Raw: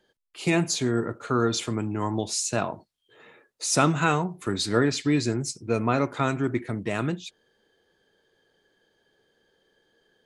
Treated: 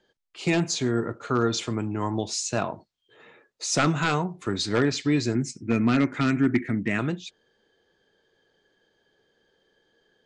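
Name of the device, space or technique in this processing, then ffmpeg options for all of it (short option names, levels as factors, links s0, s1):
synthesiser wavefolder: -filter_complex "[0:a]asettb=1/sr,asplit=3[s0][s1][s2];[s0]atrim=end=5.354[s3];[s1]atrim=start=5.35:end=6.99,asetpts=PTS-STARTPTS,afade=t=in:d=0.004:c=qsin,afade=t=out:st=1.636:d=0.004:c=qsin,equalizer=f=250:t=o:w=1:g=9,equalizer=f=500:t=o:w=1:g=-6,equalizer=f=1000:t=o:w=1:g=-7,equalizer=f=2000:t=o:w=1:g=11,equalizer=f=4000:t=o:w=1:g=-9[s4];[s2]atrim=start=6.986[s5];[s3][s4]acrossfade=d=0.004:c1=hsin:c2=qsin[s6];[s6][s5]acrossfade=d=0.004:c1=qsin:c2=hsin,aeval=exprs='0.224*(abs(mod(val(0)/0.224+3,4)-2)-1)':c=same,lowpass=f=7400:w=0.5412,lowpass=f=7400:w=1.3066"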